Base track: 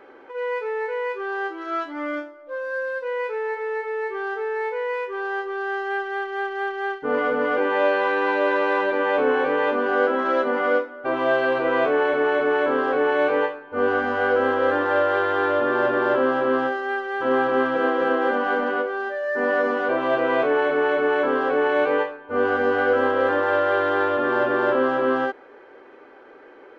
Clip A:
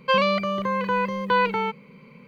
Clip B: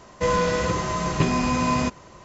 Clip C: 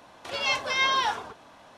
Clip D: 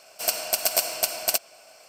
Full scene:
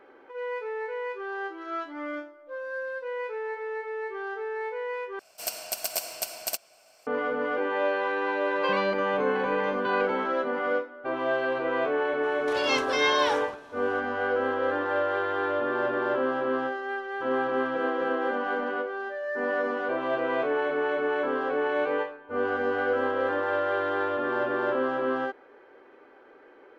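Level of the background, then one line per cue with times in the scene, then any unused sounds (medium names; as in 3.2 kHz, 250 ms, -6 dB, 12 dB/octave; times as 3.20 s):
base track -6.5 dB
5.19 s: replace with D -7.5 dB
8.55 s: add A -9.5 dB
12.23 s: add C -1.5 dB
not used: B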